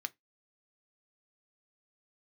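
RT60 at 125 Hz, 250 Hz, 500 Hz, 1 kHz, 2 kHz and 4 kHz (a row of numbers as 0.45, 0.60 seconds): 0.20, 0.20, 0.15, 0.15, 0.15, 0.15 seconds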